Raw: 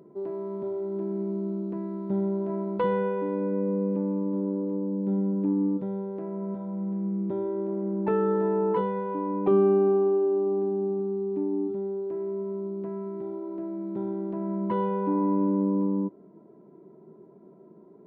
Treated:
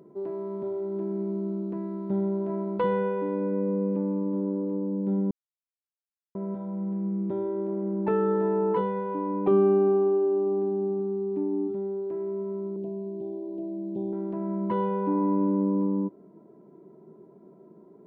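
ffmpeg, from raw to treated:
ffmpeg -i in.wav -filter_complex "[0:a]asettb=1/sr,asplit=3[link_01][link_02][link_03];[link_01]atrim=end=12.764[link_04];[link_02]atrim=start=12.76:end=14.13,asetpts=PTS-STARTPTS,afade=type=in:duration=0.004:curve=qsin,afade=type=out:start_time=1.366:duration=0.004:curve=qsin,asuperstop=centerf=1500:order=8:qfactor=0.78[link_05];[link_03]atrim=start=14.126[link_06];[link_04][link_05]acrossfade=duration=0.004:curve1=hsin:curve2=qsin[link_07];[link_07][link_06]acrossfade=duration=0.004:curve1=qsin:curve2=hsin,asplit=3[link_08][link_09][link_10];[link_08]atrim=end=5.31,asetpts=PTS-STARTPTS,afade=type=out:start_time=5.306:duration=0.004:curve=hsin[link_11];[link_09]atrim=start=5.31:end=6.35,asetpts=PTS-STARTPTS,volume=0[link_12];[link_10]atrim=start=6.35,asetpts=PTS-STARTPTS,afade=type=in:duration=0.004:curve=hsin[link_13];[link_11][link_12][link_13]concat=n=3:v=0:a=1" out.wav

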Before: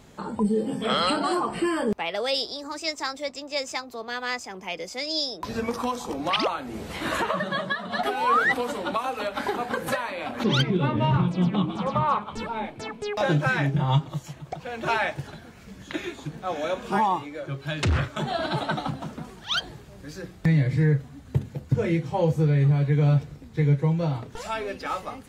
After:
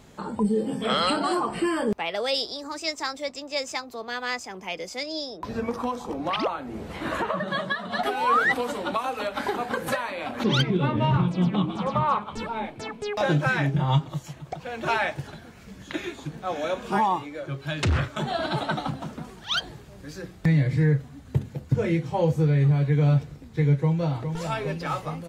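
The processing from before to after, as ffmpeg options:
ffmpeg -i in.wav -filter_complex "[0:a]asettb=1/sr,asplit=3[link_01][link_02][link_03];[link_01]atrim=end=5.034[link_04];[link_02]atrim=start=5.03:end=7.48,asetpts=PTS-STARTPTS,afade=type=in:duration=0.004:curve=qsin,afade=type=out:start_time=2.446:duration=0.004:curve=qsin,highshelf=frequency=2500:gain=-9.5[link_05];[link_03]atrim=start=7.476[link_06];[link_04][link_05]acrossfade=duration=0.004:curve1=hsin:curve2=qsin[link_07];[link_07][link_06]acrossfade=duration=0.004:curve1=qsin:curve2=hsin,asplit=2[link_08][link_09];[link_09]afade=type=in:start_time=23.78:duration=0.01,afade=type=out:start_time=24.24:duration=0.01,aecho=0:1:410|820|1230|1640|2050|2460|2870|3280|3690|4100|4510|4920:0.421697|0.316272|0.237204|0.177903|0.133427|0.100071|0.0750529|0.0562897|0.0422173|0.0316629|0.0237472|0.0178104[link_10];[link_08][link_10]amix=inputs=2:normalize=0" out.wav

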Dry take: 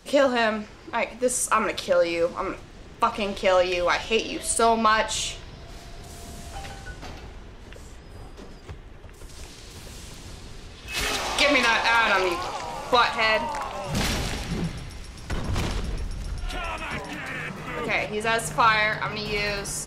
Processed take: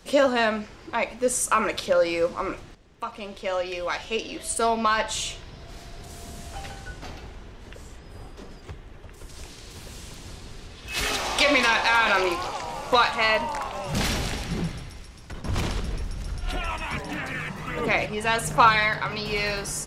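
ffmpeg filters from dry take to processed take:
ffmpeg -i in.wav -filter_complex "[0:a]asettb=1/sr,asplit=3[link_01][link_02][link_03];[link_01]atrim=end=16.474[link_04];[link_02]atrim=start=16.47:end=18.93,asetpts=PTS-STARTPTS,afade=type=in:duration=0.004:curve=qsin,afade=type=out:start_time=2.456:duration=0.004:curve=qsin,aphaser=in_gain=1:out_gain=1:delay=1.1:decay=0.34:speed=1.4:type=sinusoidal[link_05];[link_03]atrim=start=18.926[link_06];[link_04][link_05]acrossfade=duration=0.004:curve1=hsin:curve2=qsin[link_07];[link_07][link_06]acrossfade=duration=0.004:curve1=qsin:curve2=hsin,asplit=3[link_08][link_09][link_10];[link_08]atrim=end=2.75,asetpts=PTS-STARTPTS,afade=type=out:start_time=2.746:duration=0.004:curve=hsin:silence=0.223872[link_11];[link_09]atrim=start=2.75:end=15.44,asetpts=PTS-STARTPTS,afade=type=in:duration=3.14:silence=0.223872,afade=type=out:start_time=11.94:duration=0.75:silence=0.281838[link_12];[link_10]atrim=start=15.44,asetpts=PTS-STARTPTS,afade=type=in:duration=0.004:curve=hsin:silence=0.281838[link_13];[link_11][link_12][link_13]concat=n=3:v=0:a=1" out.wav

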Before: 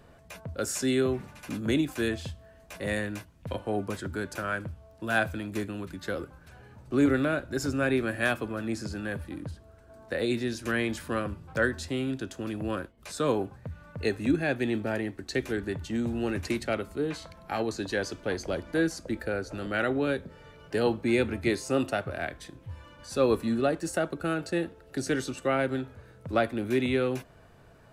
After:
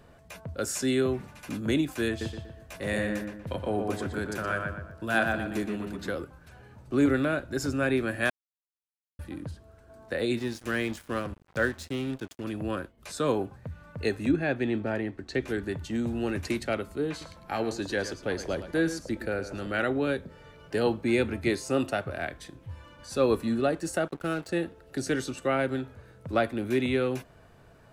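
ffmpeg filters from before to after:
ffmpeg -i in.wav -filter_complex "[0:a]asettb=1/sr,asplit=3[link_01][link_02][link_03];[link_01]atrim=end=2.094[link_04];[link_02]atrim=start=2.09:end=6.14,asetpts=PTS-STARTPTS,afade=type=in:duration=0.004:curve=qsin,afade=type=out:start_time=4.046:duration=0.004:curve=qsin,asplit=2[link_05][link_06];[link_06]adelay=120,lowpass=frequency=2500:poles=1,volume=-3dB,asplit=2[link_07][link_08];[link_08]adelay=120,lowpass=frequency=2500:poles=1,volume=0.43,asplit=2[link_09][link_10];[link_10]adelay=120,lowpass=frequency=2500:poles=1,volume=0.43,asplit=2[link_11][link_12];[link_12]adelay=120,lowpass=frequency=2500:poles=1,volume=0.43,asplit=2[link_13][link_14];[link_14]adelay=120,lowpass=frequency=2500:poles=1,volume=0.43,asplit=2[link_15][link_16];[link_16]adelay=120,lowpass=frequency=2500:poles=1,volume=0.43[link_17];[link_05][link_07][link_09][link_11][link_13][link_15][link_17]amix=inputs=7:normalize=0,atrim=end_sample=178605[link_18];[link_03]atrim=start=6.136[link_19];[link_04][link_18]acrossfade=duration=0.004:curve1=hsin:curve2=qsin[link_20];[link_20][link_19]acrossfade=duration=0.004:curve1=qsin:curve2=hsin,asettb=1/sr,asplit=3[link_21][link_22][link_23];[link_21]atrim=end=10.394[link_24];[link_22]atrim=start=10.39:end=12.44,asetpts=PTS-STARTPTS,afade=type=in:duration=0.004:curve=qsin,afade=type=out:start_time=2.046:duration=0.004:curve=qsin,aeval=exprs='sgn(val(0))*max(abs(val(0))-0.00708,0)':channel_layout=same[link_25];[link_23]atrim=start=12.436[link_26];[link_24][link_25]acrossfade=duration=0.004:curve1=hsin:curve2=qsin[link_27];[link_27][link_26]acrossfade=duration=0.004:curve1=qsin:curve2=hsin,asettb=1/sr,asplit=3[link_28][link_29][link_30];[link_28]atrim=end=14.294[link_31];[link_29]atrim=start=14.29:end=15.48,asetpts=PTS-STARTPTS,afade=type=in:duration=0.004:curve=qsin,afade=type=out:start_time=1.186:duration=0.004:curve=qsin,aemphasis=mode=reproduction:type=50fm[link_32];[link_30]atrim=start=15.476[link_33];[link_31][link_32]acrossfade=duration=0.004:curve1=hsin:curve2=qsin[link_34];[link_34][link_33]acrossfade=duration=0.004:curve1=qsin:curve2=hsin,asettb=1/sr,asplit=3[link_35][link_36][link_37];[link_35]atrim=end=17.104[link_38];[link_36]atrim=start=17.1:end=19.82,asetpts=PTS-STARTPTS,afade=type=in:duration=0.004:curve=qsin,afade=type=out:start_time=2.716:duration=0.004:curve=qsin,aecho=1:1:110:0.251,atrim=end_sample=119952[link_39];[link_37]atrim=start=19.816[link_40];[link_38][link_39]acrossfade=duration=0.004:curve1=hsin:curve2=qsin[link_41];[link_41][link_40]acrossfade=duration=0.004:curve1=qsin:curve2=hsin,asettb=1/sr,asplit=3[link_42][link_43][link_44];[link_42]atrim=end=24.084[link_45];[link_43]atrim=start=24.08:end=24.49,asetpts=PTS-STARTPTS,afade=type=in:duration=0.004:curve=qsin,afade=type=out:start_time=0.406:duration=0.004:curve=qsin,aeval=exprs='sgn(val(0))*max(abs(val(0))-0.00596,0)':channel_layout=same[link_46];[link_44]atrim=start=24.486[link_47];[link_45][link_46]acrossfade=duration=0.004:curve1=hsin:curve2=qsin[link_48];[link_48][link_47]acrossfade=duration=0.004:curve1=qsin:curve2=hsin,asplit=3[link_49][link_50][link_51];[link_49]atrim=end=8.3,asetpts=PTS-STARTPTS,afade=type=out:start_time=8.296:duration=0.004:curve=hsin[link_52];[link_50]atrim=start=8.3:end=9.19,asetpts=PTS-STARTPTS,volume=0[link_53];[link_51]atrim=start=9.19,asetpts=PTS-STARTPTS,afade=type=in:duration=0.004:curve=hsin[link_54];[link_52][link_53][link_54]concat=n=3:v=0:a=1" out.wav

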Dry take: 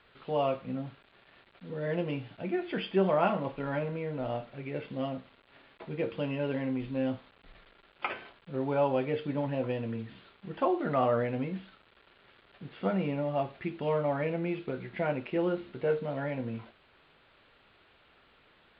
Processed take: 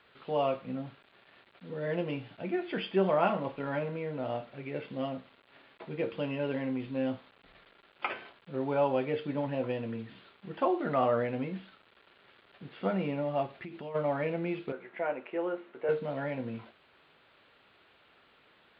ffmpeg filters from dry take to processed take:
ffmpeg -i in.wav -filter_complex "[0:a]asplit=3[link_01][link_02][link_03];[link_01]afade=type=out:start_time=13.46:duration=0.02[link_04];[link_02]acompressor=threshold=-37dB:ratio=8:attack=3.2:release=140:knee=1:detection=peak,afade=type=in:start_time=13.46:duration=0.02,afade=type=out:start_time=13.94:duration=0.02[link_05];[link_03]afade=type=in:start_time=13.94:duration=0.02[link_06];[link_04][link_05][link_06]amix=inputs=3:normalize=0,asettb=1/sr,asplit=3[link_07][link_08][link_09];[link_07]atrim=end=14.724[link_10];[link_08]atrim=start=14.72:end=15.89,asetpts=PTS-STARTPTS,afade=type=in:duration=0.004:curve=qsin,afade=type=out:start_time=1.166:duration=0.004:curve=qsin,highpass=410,lowpass=2100[link_11];[link_09]atrim=start=15.886[link_12];[link_10][link_11]acrossfade=duration=0.004:curve1=hsin:curve2=qsin[link_13];[link_13][link_12]acrossfade=duration=0.004:curve1=qsin:curve2=hsin,highpass=frequency=140:poles=1" out.wav

